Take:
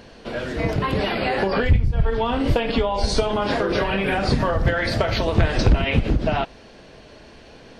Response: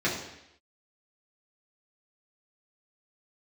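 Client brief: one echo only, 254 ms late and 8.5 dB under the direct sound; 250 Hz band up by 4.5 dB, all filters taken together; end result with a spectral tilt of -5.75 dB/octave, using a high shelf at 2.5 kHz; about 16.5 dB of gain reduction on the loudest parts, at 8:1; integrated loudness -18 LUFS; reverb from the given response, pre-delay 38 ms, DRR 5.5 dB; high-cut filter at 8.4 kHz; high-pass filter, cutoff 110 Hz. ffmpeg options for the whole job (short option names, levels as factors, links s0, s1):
-filter_complex "[0:a]highpass=110,lowpass=8400,equalizer=f=250:t=o:g=6,highshelf=f=2500:g=-7.5,acompressor=threshold=0.0282:ratio=8,aecho=1:1:254:0.376,asplit=2[s0][s1];[1:a]atrim=start_sample=2205,adelay=38[s2];[s1][s2]afir=irnorm=-1:irlink=0,volume=0.133[s3];[s0][s3]amix=inputs=2:normalize=0,volume=5.62"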